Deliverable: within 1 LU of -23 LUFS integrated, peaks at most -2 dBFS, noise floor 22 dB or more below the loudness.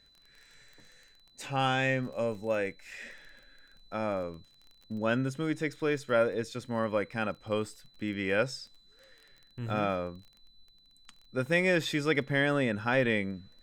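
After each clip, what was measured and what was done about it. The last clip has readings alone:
ticks 21/s; steady tone 4000 Hz; tone level -61 dBFS; loudness -31.0 LUFS; peak -14.5 dBFS; loudness target -23.0 LUFS
-> de-click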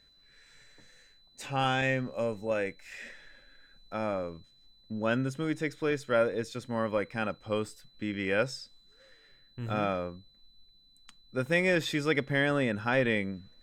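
ticks 0.073/s; steady tone 4000 Hz; tone level -61 dBFS
-> notch 4000 Hz, Q 30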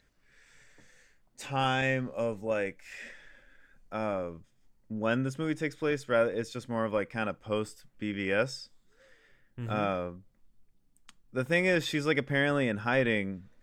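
steady tone none; loudness -31.0 LUFS; peak -14.5 dBFS; loudness target -23.0 LUFS
-> gain +8 dB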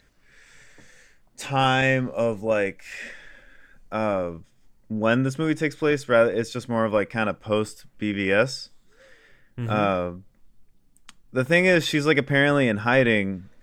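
loudness -23.0 LUFS; peak -6.5 dBFS; noise floor -60 dBFS

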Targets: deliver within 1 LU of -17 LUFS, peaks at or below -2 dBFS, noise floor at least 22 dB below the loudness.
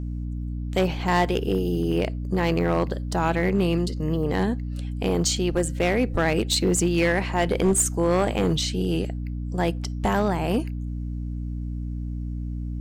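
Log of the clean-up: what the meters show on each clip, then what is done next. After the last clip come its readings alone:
clipped 1.0%; flat tops at -14.5 dBFS; hum 60 Hz; harmonics up to 300 Hz; hum level -27 dBFS; loudness -24.5 LUFS; peak -14.5 dBFS; loudness target -17.0 LUFS
-> clip repair -14.5 dBFS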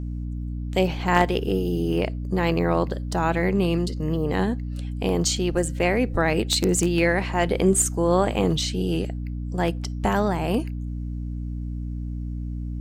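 clipped 0.0%; hum 60 Hz; harmonics up to 300 Hz; hum level -27 dBFS
-> de-hum 60 Hz, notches 5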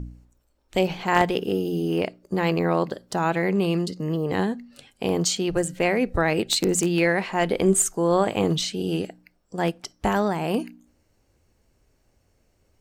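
hum none; loudness -24.0 LUFS; peak -5.0 dBFS; loudness target -17.0 LUFS
-> gain +7 dB; limiter -2 dBFS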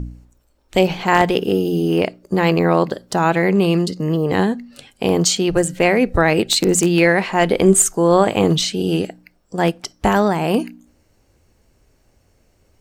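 loudness -17.0 LUFS; peak -2.0 dBFS; noise floor -60 dBFS

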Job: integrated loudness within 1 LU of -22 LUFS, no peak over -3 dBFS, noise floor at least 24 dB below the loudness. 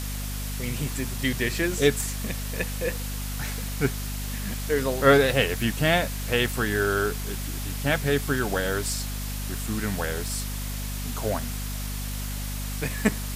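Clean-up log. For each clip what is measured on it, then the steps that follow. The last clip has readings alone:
hum 50 Hz; harmonics up to 250 Hz; hum level -30 dBFS; noise floor -31 dBFS; noise floor target -51 dBFS; loudness -26.5 LUFS; peak -5.0 dBFS; loudness target -22.0 LUFS
-> de-hum 50 Hz, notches 5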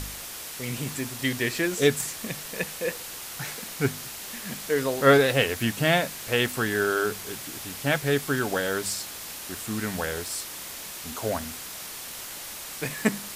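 hum none; noise floor -39 dBFS; noise floor target -52 dBFS
-> denoiser 13 dB, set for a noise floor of -39 dBFS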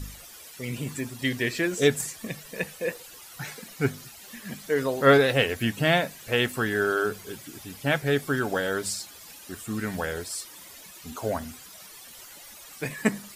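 noise floor -47 dBFS; noise floor target -51 dBFS
-> denoiser 6 dB, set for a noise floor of -47 dBFS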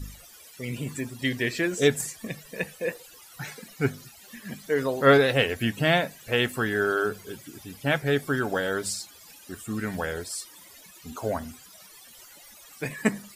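noise floor -50 dBFS; noise floor target -51 dBFS
-> denoiser 6 dB, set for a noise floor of -50 dBFS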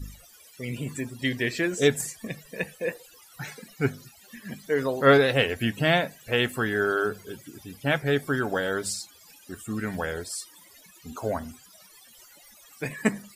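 noise floor -54 dBFS; loudness -26.5 LUFS; peak -5.0 dBFS; loudness target -22.0 LUFS
-> gain +4.5 dB; limiter -3 dBFS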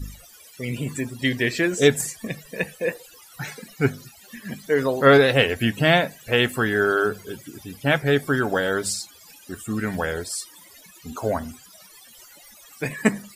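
loudness -22.0 LUFS; peak -3.0 dBFS; noise floor -49 dBFS

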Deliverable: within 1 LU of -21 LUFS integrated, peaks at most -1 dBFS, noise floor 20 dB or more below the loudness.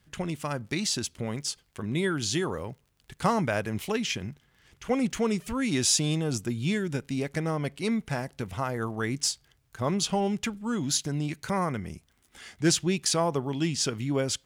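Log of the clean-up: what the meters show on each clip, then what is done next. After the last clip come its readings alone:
ticks 34/s; loudness -28.5 LUFS; peak -11.5 dBFS; loudness target -21.0 LUFS
-> de-click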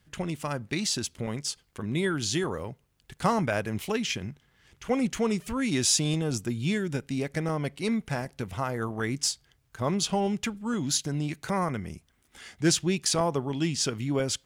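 ticks 0.28/s; loudness -29.0 LUFS; peak -11.5 dBFS; loudness target -21.0 LUFS
-> gain +8 dB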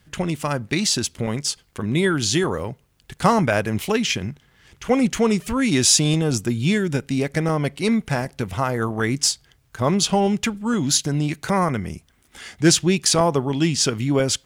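loudness -21.0 LUFS; peak -3.5 dBFS; noise floor -60 dBFS

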